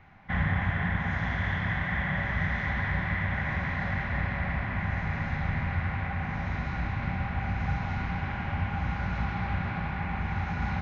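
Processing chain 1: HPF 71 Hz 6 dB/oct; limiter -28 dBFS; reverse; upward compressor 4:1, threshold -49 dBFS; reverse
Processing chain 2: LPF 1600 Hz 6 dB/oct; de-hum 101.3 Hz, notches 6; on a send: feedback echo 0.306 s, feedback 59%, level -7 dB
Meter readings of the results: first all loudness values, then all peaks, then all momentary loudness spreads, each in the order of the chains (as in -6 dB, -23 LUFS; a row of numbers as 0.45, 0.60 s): -36.5, -30.5 LUFS; -28.0, -16.0 dBFS; 1, 3 LU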